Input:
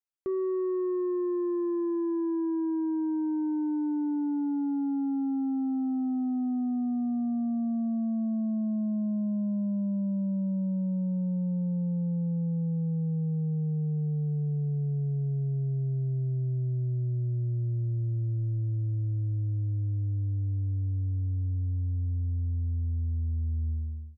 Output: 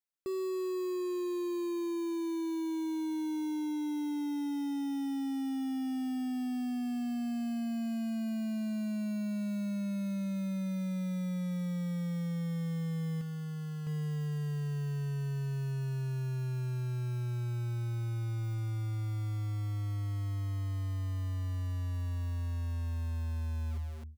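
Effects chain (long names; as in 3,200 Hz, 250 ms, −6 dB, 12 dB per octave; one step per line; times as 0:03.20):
0:13.21–0:13.87: tilt shelving filter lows −5 dB, about 690 Hz
in parallel at −7 dB: wrap-around overflow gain 37.5 dB
on the sum: level −5 dB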